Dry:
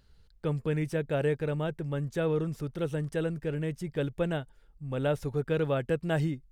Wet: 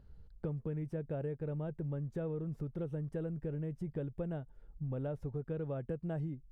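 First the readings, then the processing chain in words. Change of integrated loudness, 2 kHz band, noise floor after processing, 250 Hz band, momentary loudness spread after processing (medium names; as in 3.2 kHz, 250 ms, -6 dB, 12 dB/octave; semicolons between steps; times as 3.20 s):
-8.5 dB, -19.0 dB, -60 dBFS, -7.5 dB, 2 LU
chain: FFT filter 170 Hz 0 dB, 330 Hz -3 dB, 690 Hz -4 dB, 4 kHz -20 dB; compression 6:1, threshold -41 dBFS, peak gain reduction 14 dB; trim +5 dB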